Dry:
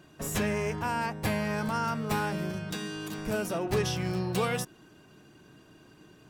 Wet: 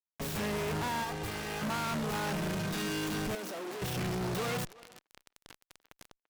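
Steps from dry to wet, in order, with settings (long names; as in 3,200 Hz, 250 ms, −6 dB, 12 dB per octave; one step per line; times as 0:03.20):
stylus tracing distortion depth 0.33 ms
automatic gain control gain up to 7.5 dB
fuzz pedal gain 45 dB, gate −39 dBFS
0:01.04–0:01.62: comb filter 2.5 ms, depth 61%
0:03.35–0:03.82: high-pass filter 220 Hz 24 dB per octave
far-end echo of a speakerphone 340 ms, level −30 dB
brickwall limiter −28 dBFS, peak gain reduction 23 dB
level −3 dB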